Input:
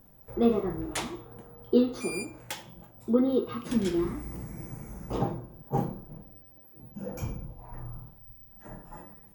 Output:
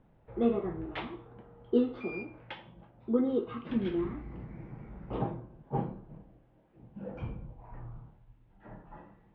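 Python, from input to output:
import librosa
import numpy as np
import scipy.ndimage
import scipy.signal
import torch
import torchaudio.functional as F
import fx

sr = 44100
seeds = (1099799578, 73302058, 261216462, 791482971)

y = scipy.signal.sosfilt(scipy.signal.butter(6, 3300.0, 'lowpass', fs=sr, output='sos'), x)
y = y * librosa.db_to_amplitude(-4.0)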